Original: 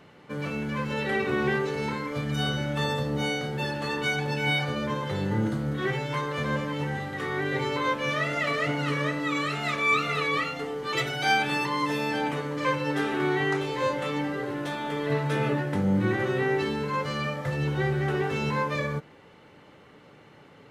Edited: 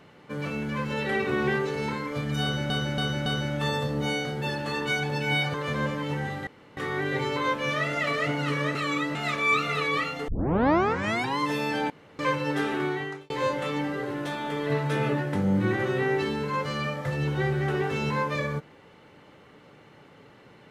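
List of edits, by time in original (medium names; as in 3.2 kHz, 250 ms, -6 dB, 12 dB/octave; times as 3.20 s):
2.42–2.70 s: loop, 4 plays
4.70–6.24 s: delete
7.17 s: insert room tone 0.30 s
9.15–9.55 s: reverse
10.68 s: tape start 1.11 s
12.30–12.59 s: room tone
13.12–13.70 s: fade out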